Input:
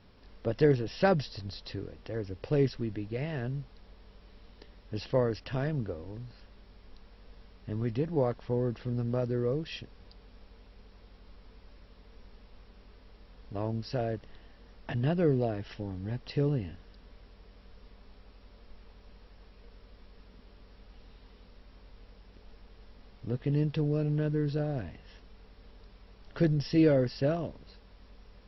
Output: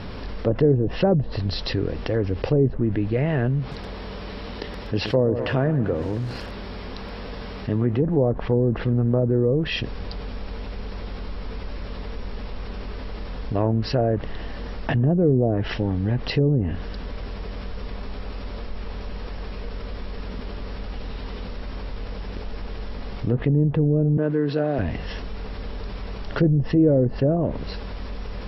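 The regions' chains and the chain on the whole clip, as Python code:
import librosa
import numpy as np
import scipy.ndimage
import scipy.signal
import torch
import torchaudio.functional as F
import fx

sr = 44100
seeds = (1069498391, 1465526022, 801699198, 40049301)

y = fx.chain(x, sr, fx.highpass(hz=100.0, slope=6),
    fx.echo_crushed(ms=122, feedback_pct=55, bits=8, wet_db=-14.5), at=(3.59, 8.02))
y = fx.chain(y, sr, fx.highpass(hz=170.0, slope=24),
    fx.low_shelf(hz=340.0, db=-5.5), at=(24.17, 24.79))
y = fx.env_lowpass_down(y, sr, base_hz=570.0, full_db=-25.0)
y = fx.high_shelf(y, sr, hz=5000.0, db=-8.0)
y = fx.env_flatten(y, sr, amount_pct=50)
y = y * librosa.db_to_amplitude(6.0)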